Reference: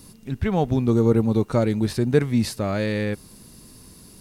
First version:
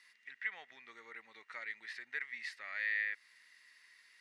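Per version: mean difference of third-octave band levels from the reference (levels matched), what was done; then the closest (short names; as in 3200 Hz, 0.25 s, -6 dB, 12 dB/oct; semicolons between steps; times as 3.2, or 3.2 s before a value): 14.0 dB: in parallel at +2.5 dB: compressor, threshold -29 dBFS, peak gain reduction 16 dB; on the sum: ladder band-pass 2000 Hz, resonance 85%; gain -4 dB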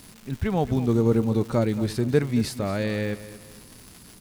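3.5 dB: crackle 360/s -33 dBFS; feedback echo 0.225 s, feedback 38%, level -15 dB; gain -2.5 dB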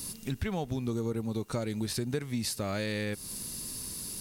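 8.5 dB: high shelf 2700 Hz +12 dB; compressor 6:1, threshold -30 dBFS, peak gain reduction 17.5 dB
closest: second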